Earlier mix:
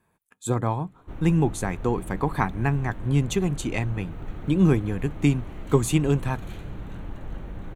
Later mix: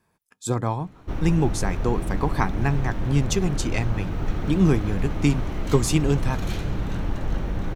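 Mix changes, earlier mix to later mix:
background +9.5 dB; master: add peaking EQ 5.2 kHz +14.5 dB 0.41 oct

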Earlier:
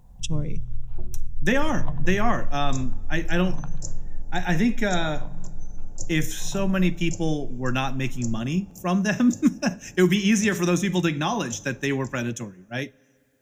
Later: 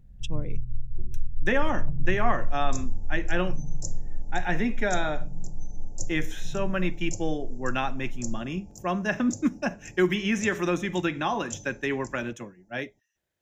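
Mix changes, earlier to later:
speech: add tone controls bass -10 dB, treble -14 dB; first sound: add Gaussian low-pass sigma 19 samples; reverb: off

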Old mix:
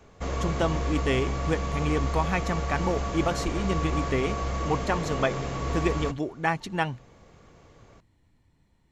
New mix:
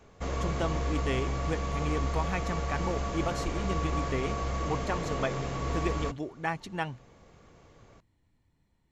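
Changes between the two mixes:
speech -6.0 dB; reverb: off

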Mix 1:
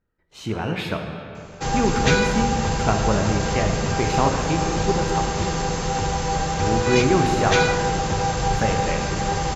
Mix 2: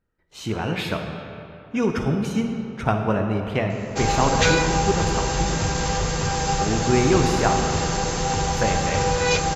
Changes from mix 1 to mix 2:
background: entry +2.35 s; master: add treble shelf 4.9 kHz +5 dB

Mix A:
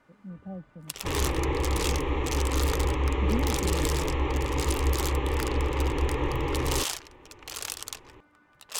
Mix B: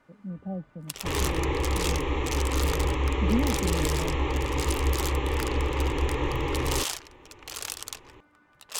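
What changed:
speech +5.0 dB; second sound: remove low-pass 3 kHz 6 dB/octave

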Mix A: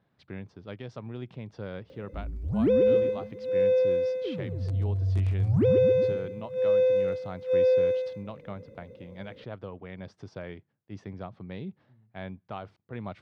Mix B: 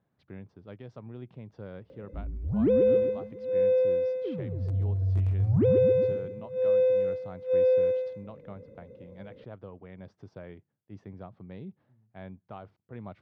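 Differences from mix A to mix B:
speech -4.0 dB; master: add treble shelf 2 kHz -9.5 dB

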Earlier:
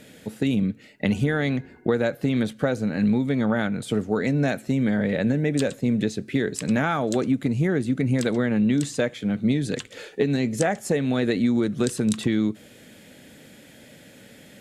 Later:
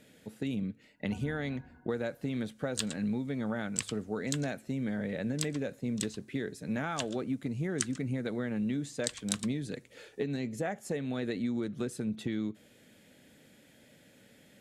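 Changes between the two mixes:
speech -11.5 dB; first sound: add static phaser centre 950 Hz, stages 4; second sound: entry -2.80 s

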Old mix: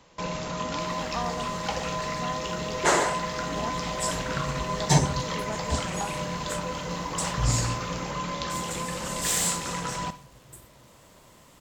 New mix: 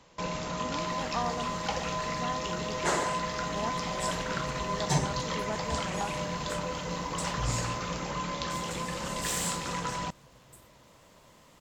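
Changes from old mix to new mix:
second sound -7.5 dB; reverb: off

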